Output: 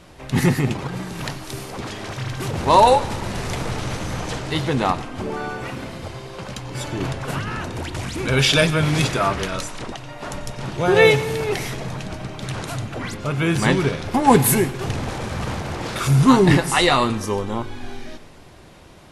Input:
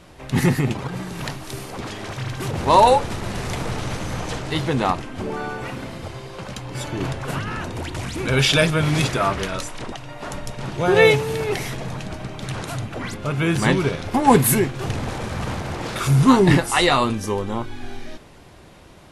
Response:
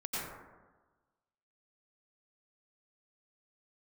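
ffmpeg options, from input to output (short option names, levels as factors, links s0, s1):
-filter_complex "[0:a]asplit=2[s0][s1];[s1]equalizer=f=5200:w=0.63:g=11.5[s2];[1:a]atrim=start_sample=2205[s3];[s2][s3]afir=irnorm=-1:irlink=0,volume=0.075[s4];[s0][s4]amix=inputs=2:normalize=0"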